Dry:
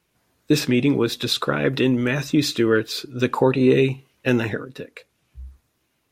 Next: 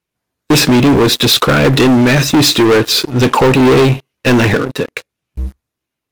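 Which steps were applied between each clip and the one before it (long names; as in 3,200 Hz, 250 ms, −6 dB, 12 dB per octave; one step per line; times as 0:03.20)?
leveller curve on the samples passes 5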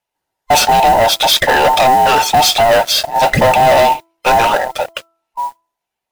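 frequency inversion band by band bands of 1,000 Hz
noise that follows the level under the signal 23 dB
hum removal 332 Hz, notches 4
level −1 dB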